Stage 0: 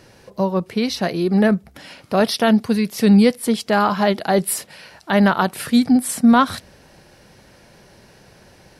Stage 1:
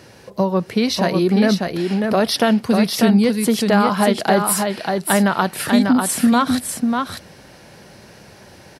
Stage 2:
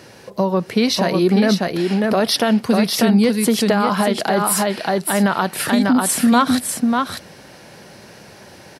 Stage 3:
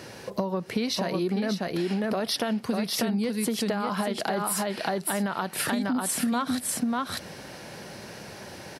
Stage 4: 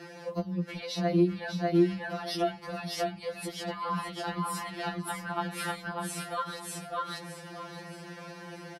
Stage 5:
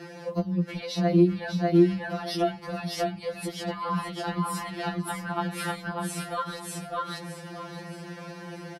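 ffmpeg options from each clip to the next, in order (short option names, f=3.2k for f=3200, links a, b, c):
-af "highpass=66,acompressor=threshold=-16dB:ratio=6,aecho=1:1:594:0.596,volume=4dB"
-af "lowshelf=f=69:g=-12,alimiter=limit=-8.5dB:level=0:latency=1:release=83,volume=2.5dB"
-af "acompressor=threshold=-25dB:ratio=6"
-af "lowpass=f=3k:p=1,aecho=1:1:620|1240|1860|2480:0.251|0.103|0.0422|0.0173,afftfilt=real='re*2.83*eq(mod(b,8),0)':imag='im*2.83*eq(mod(b,8),0)':win_size=2048:overlap=0.75"
-af "lowshelf=f=400:g=5,volume=1.5dB"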